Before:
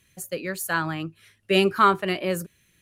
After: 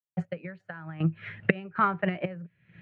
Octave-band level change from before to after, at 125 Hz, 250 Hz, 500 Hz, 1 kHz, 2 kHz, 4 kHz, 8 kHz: +1.5 dB, -3.5 dB, -9.0 dB, -7.5 dB, -5.0 dB, -18.5 dB, under -40 dB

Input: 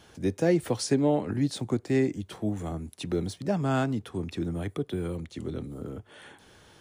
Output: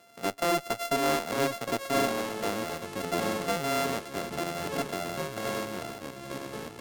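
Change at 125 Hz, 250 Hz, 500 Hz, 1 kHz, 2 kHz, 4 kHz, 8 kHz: -10.0 dB, -6.0 dB, -0.5 dB, +7.0 dB, +7.0 dB, +5.5 dB, +4.5 dB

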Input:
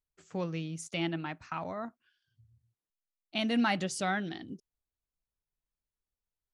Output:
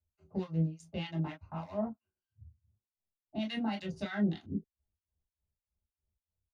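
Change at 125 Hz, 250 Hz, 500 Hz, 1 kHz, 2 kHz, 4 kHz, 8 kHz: +4.0 dB, -0.5 dB, -3.0 dB, -8.5 dB, -9.0 dB, -7.5 dB, under -15 dB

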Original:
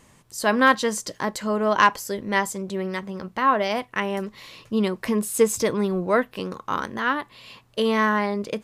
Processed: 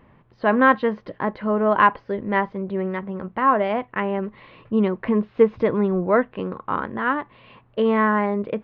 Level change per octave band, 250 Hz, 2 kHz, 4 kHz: +3.0 dB, -0.5 dB, -10.0 dB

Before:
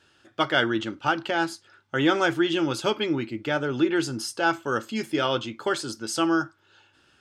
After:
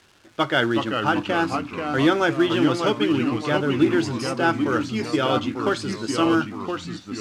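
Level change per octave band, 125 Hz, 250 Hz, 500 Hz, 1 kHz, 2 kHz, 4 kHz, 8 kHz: +6.5 dB, +5.0 dB, +3.5 dB, +3.5 dB, +1.5 dB, +1.5 dB, -1.5 dB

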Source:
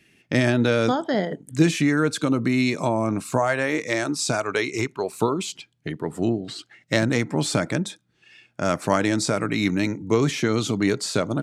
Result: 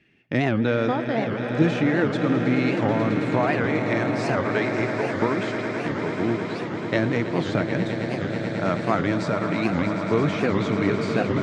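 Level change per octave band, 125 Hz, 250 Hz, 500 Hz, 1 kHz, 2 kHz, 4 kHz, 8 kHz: +0.5 dB, 0.0 dB, +0.5 dB, +1.0 dB, 0.0 dB, -6.0 dB, under -15 dB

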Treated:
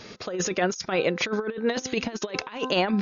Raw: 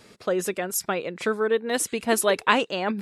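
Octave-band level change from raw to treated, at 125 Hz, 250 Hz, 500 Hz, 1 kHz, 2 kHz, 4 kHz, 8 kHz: +4.5 dB, +1.0 dB, -2.5 dB, -4.5 dB, -3.0 dB, +0.5 dB, -5.5 dB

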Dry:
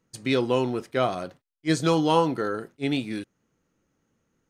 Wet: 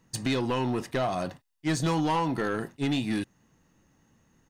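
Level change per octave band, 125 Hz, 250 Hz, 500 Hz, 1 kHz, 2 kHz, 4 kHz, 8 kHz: -0.5 dB, -2.0 dB, -6.0 dB, -2.5 dB, -1.5 dB, -3.0 dB, +1.0 dB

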